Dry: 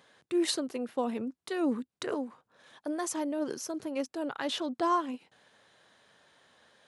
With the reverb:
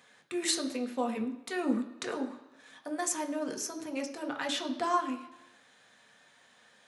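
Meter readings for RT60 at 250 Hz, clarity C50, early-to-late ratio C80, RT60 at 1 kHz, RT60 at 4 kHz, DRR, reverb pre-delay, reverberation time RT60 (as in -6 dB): 0.90 s, 11.0 dB, 13.5 dB, 1.0 s, 0.95 s, 3.0 dB, 3 ms, 1.0 s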